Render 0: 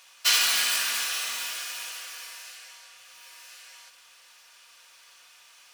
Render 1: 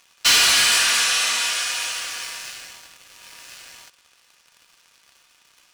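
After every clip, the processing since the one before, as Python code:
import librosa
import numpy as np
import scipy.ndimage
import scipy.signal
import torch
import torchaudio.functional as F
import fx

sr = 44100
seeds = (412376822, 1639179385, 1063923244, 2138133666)

y = scipy.signal.sosfilt(scipy.signal.butter(4, 10000.0, 'lowpass', fs=sr, output='sos'), x)
y = fx.leveller(y, sr, passes=3)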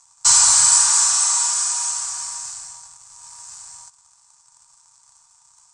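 y = fx.curve_eq(x, sr, hz=(150.0, 250.0, 400.0, 610.0, 910.0, 1700.0, 2900.0, 8100.0, 12000.0), db=(0, -28, -26, -14, 6, -13, -20, 13, -25))
y = F.gain(torch.from_numpy(y), 1.5).numpy()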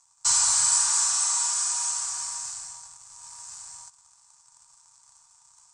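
y = fx.rider(x, sr, range_db=4, speed_s=2.0)
y = F.gain(torch.from_numpy(y), -7.0).numpy()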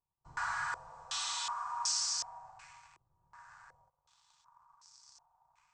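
y = fx.filter_held_lowpass(x, sr, hz=2.7, low_hz=350.0, high_hz=5100.0)
y = F.gain(torch.from_numpy(y), -6.0).numpy()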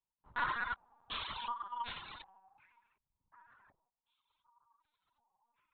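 y = fx.cheby_harmonics(x, sr, harmonics=(5, 7), levels_db=(-31, -18), full_scale_db=-19.5)
y = fx.lpc_vocoder(y, sr, seeds[0], excitation='pitch_kept', order=10)
y = fx.dereverb_blind(y, sr, rt60_s=1.7)
y = F.gain(torch.from_numpy(y), 6.0).numpy()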